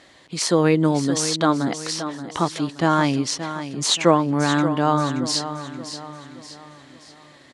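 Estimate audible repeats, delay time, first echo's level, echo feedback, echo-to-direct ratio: 4, 576 ms, -11.0 dB, 44%, -10.0 dB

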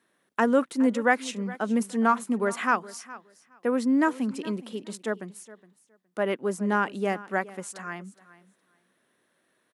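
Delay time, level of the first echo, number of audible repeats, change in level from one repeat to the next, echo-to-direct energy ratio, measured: 416 ms, -18.5 dB, 2, -15.5 dB, -18.5 dB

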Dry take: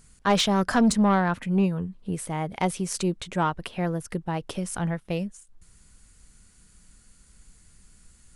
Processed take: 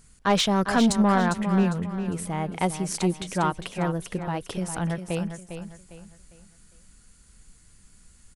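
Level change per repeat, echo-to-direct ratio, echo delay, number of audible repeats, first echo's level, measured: -9.5 dB, -8.5 dB, 403 ms, 3, -9.0 dB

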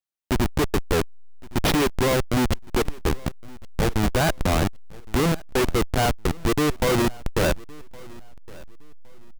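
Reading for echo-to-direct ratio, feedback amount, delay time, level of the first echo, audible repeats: -22.5 dB, 29%, 1114 ms, -23.0 dB, 2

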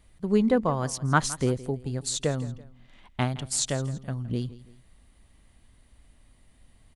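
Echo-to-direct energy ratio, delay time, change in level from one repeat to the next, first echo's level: -17.5 dB, 166 ms, -8.0 dB, -18.0 dB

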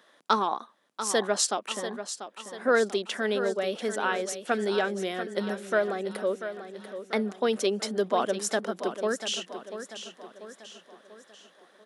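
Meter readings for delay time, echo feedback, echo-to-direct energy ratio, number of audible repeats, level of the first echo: 690 ms, 48%, -9.5 dB, 4, -10.5 dB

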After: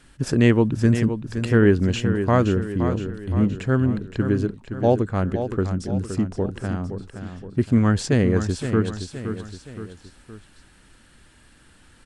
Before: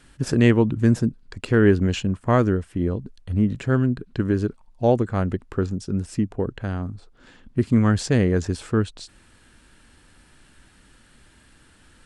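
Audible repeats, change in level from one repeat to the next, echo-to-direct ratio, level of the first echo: 3, -6.0 dB, -8.0 dB, -9.0 dB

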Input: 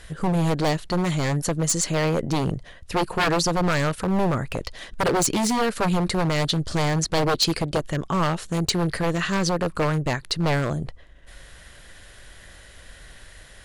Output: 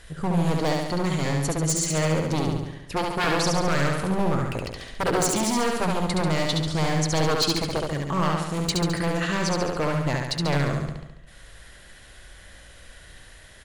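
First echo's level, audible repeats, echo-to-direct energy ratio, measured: -3.0 dB, 7, -1.0 dB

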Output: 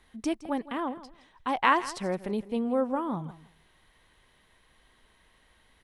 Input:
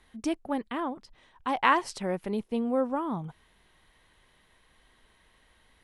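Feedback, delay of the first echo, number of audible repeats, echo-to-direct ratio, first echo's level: 20%, 165 ms, 2, -16.5 dB, -16.5 dB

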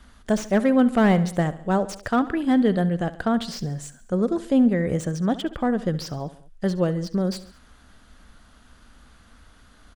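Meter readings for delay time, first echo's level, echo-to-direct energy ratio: 69 ms, -16.5 dB, -15.0 dB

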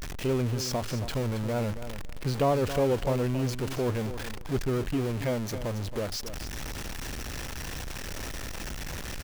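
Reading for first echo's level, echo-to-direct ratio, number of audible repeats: -11.5 dB, -11.5 dB, 2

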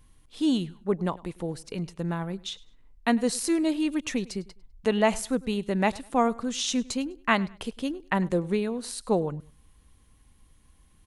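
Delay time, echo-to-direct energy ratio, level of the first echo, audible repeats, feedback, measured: 101 ms, -21.5 dB, -22.0 dB, 2, 29%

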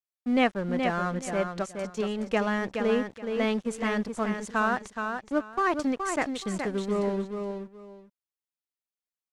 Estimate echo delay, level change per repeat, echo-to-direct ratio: 422 ms, -13.0 dB, -6.0 dB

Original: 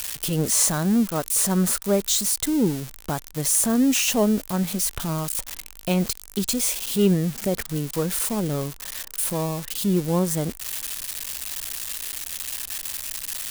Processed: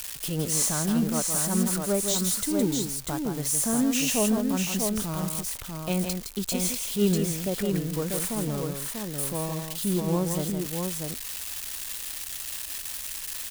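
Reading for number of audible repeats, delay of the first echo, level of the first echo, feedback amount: 2, 164 ms, -6.0 dB, no regular repeats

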